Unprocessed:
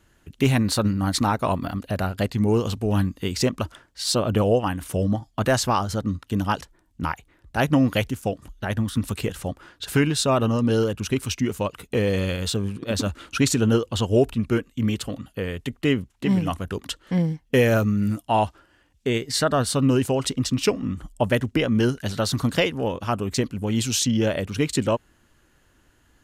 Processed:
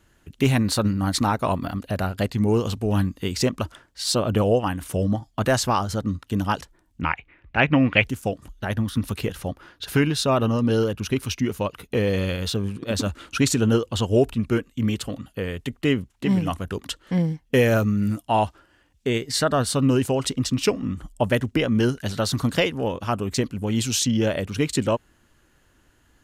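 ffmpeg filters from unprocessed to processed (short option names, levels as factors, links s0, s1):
-filter_complex "[0:a]asettb=1/sr,asplit=3[s0][s1][s2];[s0]atrim=end=7.014[s3];[s1]atrim=start=7.01:end=8.04,asetpts=PTS-STARTPTS,afade=t=in:d=0.004:c=qsin,afade=t=out:st=1.026:d=0.004:c=qsin,lowpass=f=2400:t=q:w=4.2[s4];[s2]atrim=start=8.036[s5];[s3][s4]acrossfade=d=0.004:c1=hsin:c2=qsin[s6];[s6][s5]acrossfade=d=0.004:c1=qsin:c2=hsin,asettb=1/sr,asplit=3[s7][s8][s9];[s7]atrim=end=8.694[s10];[s8]atrim=start=8.69:end=12.64,asetpts=PTS-STARTPTS,afade=t=in:d=0.004:c=qsin,afade=t=out:st=3.946:d=0.004:c=qsin,equalizer=f=7800:t=o:w=0.33:g=-8[s11];[s9]atrim=start=12.636[s12];[s10][s11]acrossfade=d=0.004:c1=hsin:c2=qsin[s13];[s13][s12]acrossfade=d=0.004:c1=qsin:c2=hsin"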